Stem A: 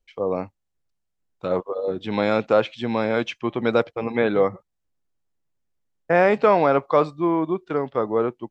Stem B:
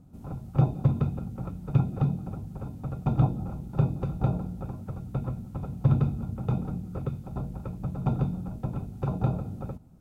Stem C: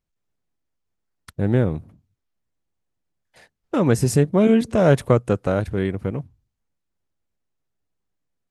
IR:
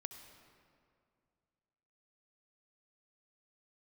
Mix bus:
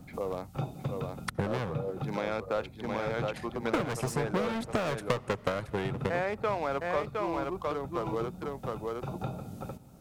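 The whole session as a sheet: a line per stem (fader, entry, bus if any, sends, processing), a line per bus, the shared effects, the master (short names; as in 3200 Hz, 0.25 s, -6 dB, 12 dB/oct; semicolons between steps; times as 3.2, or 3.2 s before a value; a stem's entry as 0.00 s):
-10.0 dB, 0.00 s, no send, echo send -5 dB, Wiener smoothing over 15 samples
-9.5 dB, 0.00 s, send -11.5 dB, no echo send, notch 1000 Hz, Q 14
-6.0 dB, 0.00 s, send -11.5 dB, no echo send, overloaded stage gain 21 dB; transient shaper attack +11 dB, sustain -6 dB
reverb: on, RT60 2.3 s, pre-delay 60 ms
echo: echo 0.712 s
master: low shelf 450 Hz -9 dB; three-band squash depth 70%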